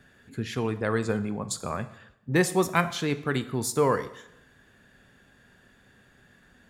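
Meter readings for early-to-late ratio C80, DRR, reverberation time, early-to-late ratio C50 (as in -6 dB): 17.0 dB, 11.5 dB, 0.85 s, 14.5 dB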